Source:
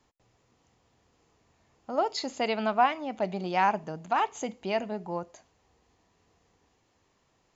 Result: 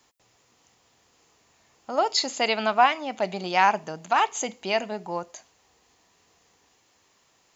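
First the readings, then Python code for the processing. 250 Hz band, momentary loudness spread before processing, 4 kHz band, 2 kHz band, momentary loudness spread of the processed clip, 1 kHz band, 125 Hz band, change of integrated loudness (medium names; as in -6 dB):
0.0 dB, 10 LU, +9.5 dB, +7.5 dB, 12 LU, +4.5 dB, -1.0 dB, +5.0 dB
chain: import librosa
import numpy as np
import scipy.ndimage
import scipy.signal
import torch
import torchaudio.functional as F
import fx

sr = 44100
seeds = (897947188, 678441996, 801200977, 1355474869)

y = fx.tilt_eq(x, sr, slope=2.5)
y = F.gain(torch.from_numpy(y), 5.0).numpy()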